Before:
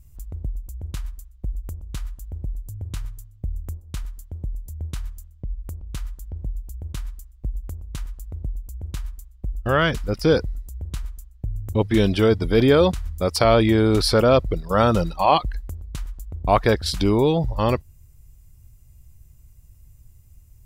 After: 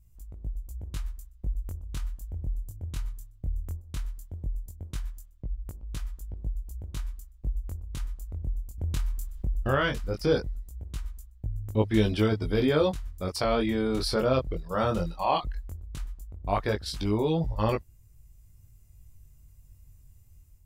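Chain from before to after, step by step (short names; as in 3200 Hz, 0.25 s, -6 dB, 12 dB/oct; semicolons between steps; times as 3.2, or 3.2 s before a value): AGC gain up to 6 dB; chorus 0.17 Hz, delay 18.5 ms, depth 4.8 ms; 8.78–9.75 fast leveller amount 50%; gain -7.5 dB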